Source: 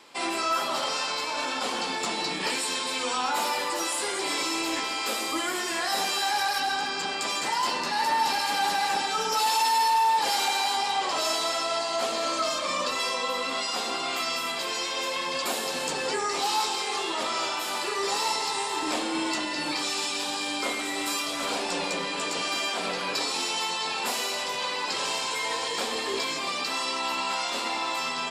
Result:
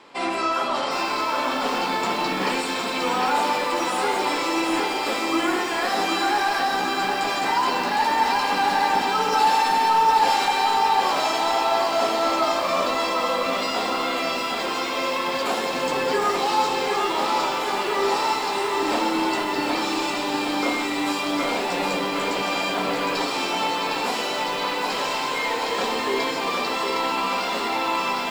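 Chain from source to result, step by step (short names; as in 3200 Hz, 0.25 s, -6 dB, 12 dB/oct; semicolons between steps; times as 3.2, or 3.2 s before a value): LPF 1800 Hz 6 dB/oct; on a send at -9 dB: reverb RT60 0.50 s, pre-delay 4 ms; on the sum: lo-fi delay 0.76 s, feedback 55%, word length 8-bit, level -4 dB; gain +6 dB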